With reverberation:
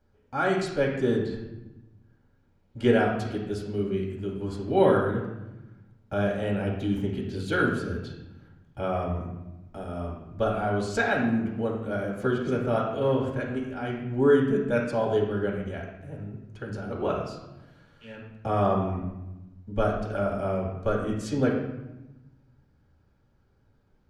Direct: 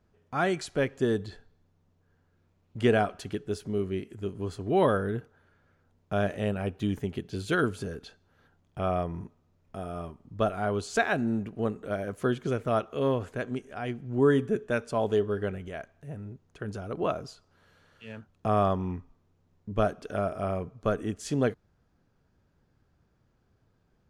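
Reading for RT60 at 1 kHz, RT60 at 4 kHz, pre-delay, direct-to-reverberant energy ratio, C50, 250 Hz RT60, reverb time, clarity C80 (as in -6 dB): 0.95 s, 0.70 s, 3 ms, -3.5 dB, 3.5 dB, 1.5 s, 1.0 s, 6.0 dB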